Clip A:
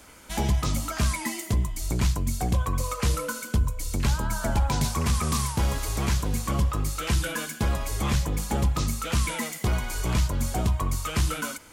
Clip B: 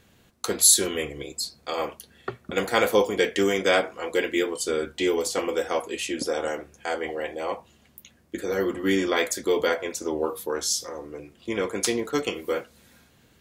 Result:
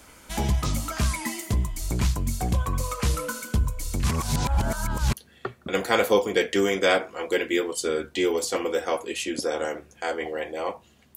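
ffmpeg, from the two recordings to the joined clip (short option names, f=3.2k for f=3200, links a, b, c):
-filter_complex "[0:a]apad=whole_dur=11.16,atrim=end=11.16,asplit=2[a][b];[a]atrim=end=4.042[c];[b]atrim=start=4.038:end=5.132,asetpts=PTS-STARTPTS,areverse[d];[1:a]atrim=start=1.958:end=7.99[e];[c][d]acrossfade=d=0.004:c1=hsin:c2=hsin[f];[f][e]acrossfade=d=0.004:c1=hsin:c2=hsin"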